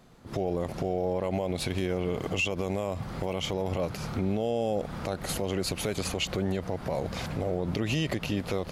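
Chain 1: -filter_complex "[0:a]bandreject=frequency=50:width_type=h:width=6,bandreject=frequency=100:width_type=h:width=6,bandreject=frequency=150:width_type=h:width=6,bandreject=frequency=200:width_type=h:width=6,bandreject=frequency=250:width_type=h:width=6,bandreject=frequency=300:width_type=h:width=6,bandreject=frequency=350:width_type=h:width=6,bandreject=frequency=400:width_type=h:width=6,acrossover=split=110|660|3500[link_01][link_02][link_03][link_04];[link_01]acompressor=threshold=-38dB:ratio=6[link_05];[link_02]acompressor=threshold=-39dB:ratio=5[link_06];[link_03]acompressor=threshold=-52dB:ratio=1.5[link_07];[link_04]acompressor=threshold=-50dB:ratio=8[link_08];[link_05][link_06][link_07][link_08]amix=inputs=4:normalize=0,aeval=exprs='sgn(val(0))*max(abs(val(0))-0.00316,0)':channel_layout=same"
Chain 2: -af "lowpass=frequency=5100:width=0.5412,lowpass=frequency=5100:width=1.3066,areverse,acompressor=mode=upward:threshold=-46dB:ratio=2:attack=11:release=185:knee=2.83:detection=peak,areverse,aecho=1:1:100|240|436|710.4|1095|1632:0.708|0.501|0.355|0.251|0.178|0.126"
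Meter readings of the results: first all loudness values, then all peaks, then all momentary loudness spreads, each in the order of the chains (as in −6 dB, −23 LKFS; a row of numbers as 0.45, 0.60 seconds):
−40.0, −28.0 LKFS; −23.5, −12.0 dBFS; 2, 4 LU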